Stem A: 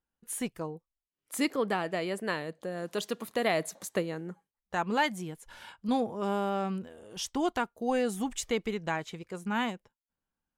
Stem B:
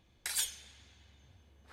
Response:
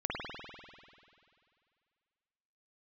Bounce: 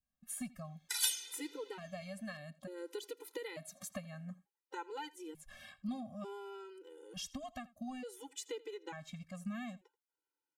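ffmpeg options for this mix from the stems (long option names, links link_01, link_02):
-filter_complex "[0:a]acompressor=threshold=-35dB:ratio=6,volume=-1.5dB,asplit=2[link_01][link_02];[link_02]volume=-21dB[link_03];[1:a]highpass=frequency=910:poles=1,dynaudnorm=framelen=140:gausssize=5:maxgain=6dB,adelay=650,volume=1.5dB[link_04];[link_03]aecho=0:1:83:1[link_05];[link_01][link_04][link_05]amix=inputs=3:normalize=0,adynamicequalizer=threshold=0.00178:dfrequency=960:dqfactor=0.79:tfrequency=960:tqfactor=0.79:attack=5:release=100:ratio=0.375:range=3:mode=cutabove:tftype=bell,afftfilt=real='re*gt(sin(2*PI*0.56*pts/sr)*(1-2*mod(floor(b*sr/1024/260),2)),0)':imag='im*gt(sin(2*PI*0.56*pts/sr)*(1-2*mod(floor(b*sr/1024/260),2)),0)':win_size=1024:overlap=0.75"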